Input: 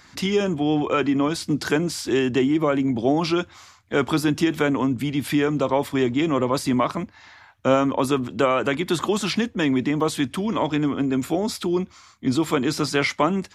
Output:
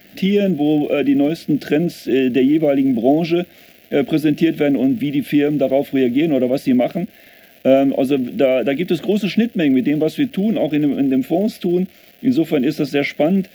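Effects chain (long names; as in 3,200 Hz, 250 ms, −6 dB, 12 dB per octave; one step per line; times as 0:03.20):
surface crackle 550 per second −33 dBFS
drawn EQ curve 120 Hz 0 dB, 190 Hz +14 dB, 410 Hz +9 dB, 680 Hz +14 dB, 1,000 Hz −23 dB, 1,600 Hz +3 dB, 2,700 Hz +9 dB, 4,100 Hz +1 dB, 8,600 Hz −8 dB, 13,000 Hz +9 dB
level −5 dB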